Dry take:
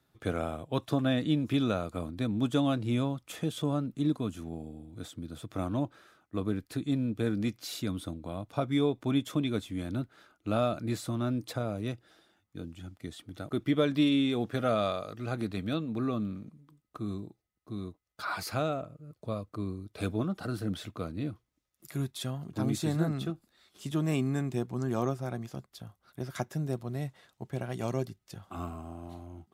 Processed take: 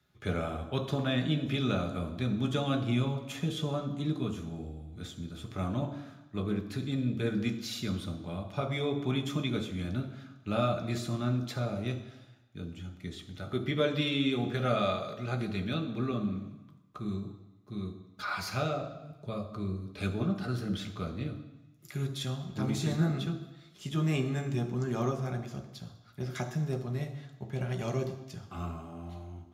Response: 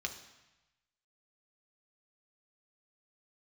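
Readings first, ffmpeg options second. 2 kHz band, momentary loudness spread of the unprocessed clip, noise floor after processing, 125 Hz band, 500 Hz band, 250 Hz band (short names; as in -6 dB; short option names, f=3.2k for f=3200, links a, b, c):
+2.0 dB, 16 LU, -56 dBFS, +1.5 dB, -1.0 dB, -2.0 dB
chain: -filter_complex "[1:a]atrim=start_sample=2205[a];[0:a][a]afir=irnorm=-1:irlink=0"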